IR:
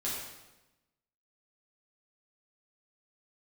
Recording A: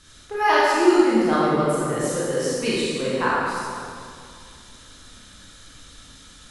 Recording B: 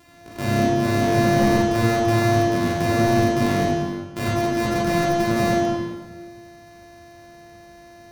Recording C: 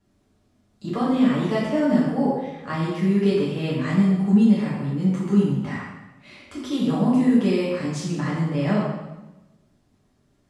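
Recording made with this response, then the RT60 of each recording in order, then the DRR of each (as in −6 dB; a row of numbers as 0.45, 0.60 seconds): C; 2.3, 1.4, 1.0 seconds; −8.0, −7.0, −7.5 decibels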